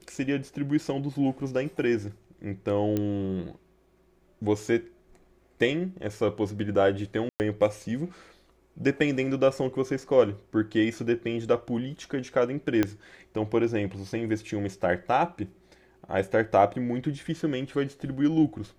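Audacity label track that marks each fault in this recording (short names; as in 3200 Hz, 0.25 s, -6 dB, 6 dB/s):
2.970000	2.970000	pop -15 dBFS
7.290000	7.400000	gap 0.109 s
12.830000	12.830000	pop -11 dBFS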